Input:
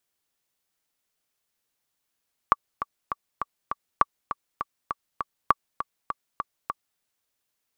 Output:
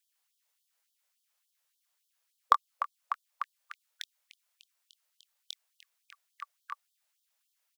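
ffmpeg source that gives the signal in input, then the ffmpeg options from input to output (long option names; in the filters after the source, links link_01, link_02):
-f lavfi -i "aevalsrc='pow(10,(-3.5-11*gte(mod(t,5*60/201),60/201))/20)*sin(2*PI*1150*mod(t,60/201))*exp(-6.91*mod(t,60/201)/0.03)':duration=4.47:sample_rate=44100"
-filter_complex "[0:a]volume=7.5dB,asoftclip=hard,volume=-7.5dB,asplit=2[link_01][link_02];[link_02]adelay=24,volume=-8dB[link_03];[link_01][link_03]amix=inputs=2:normalize=0,afftfilt=real='re*gte(b*sr/1024,440*pow(3100/440,0.5+0.5*sin(2*PI*3.5*pts/sr)))':imag='im*gte(b*sr/1024,440*pow(3100/440,0.5+0.5*sin(2*PI*3.5*pts/sr)))':win_size=1024:overlap=0.75"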